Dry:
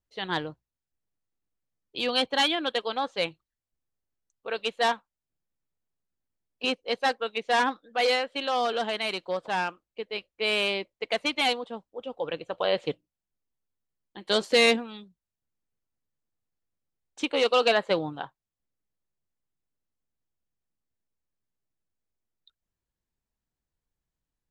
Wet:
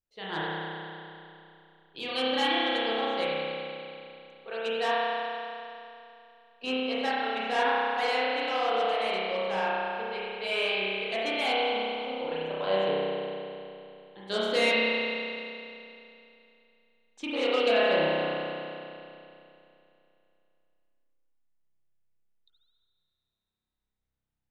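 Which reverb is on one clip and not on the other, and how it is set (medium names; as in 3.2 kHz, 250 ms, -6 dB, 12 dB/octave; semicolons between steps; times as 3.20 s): spring tank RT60 2.8 s, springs 31 ms, chirp 75 ms, DRR -8.5 dB; trim -9 dB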